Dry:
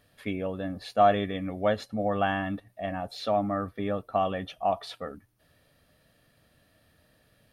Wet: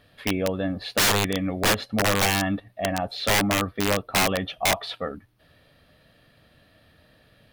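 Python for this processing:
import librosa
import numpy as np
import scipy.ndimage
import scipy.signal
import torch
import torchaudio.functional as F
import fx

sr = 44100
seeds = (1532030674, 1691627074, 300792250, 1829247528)

y = fx.high_shelf_res(x, sr, hz=5100.0, db=-7.0, q=1.5)
y = (np.mod(10.0 ** (21.0 / 20.0) * y + 1.0, 2.0) - 1.0) / 10.0 ** (21.0 / 20.0)
y = y * librosa.db_to_amplitude(6.5)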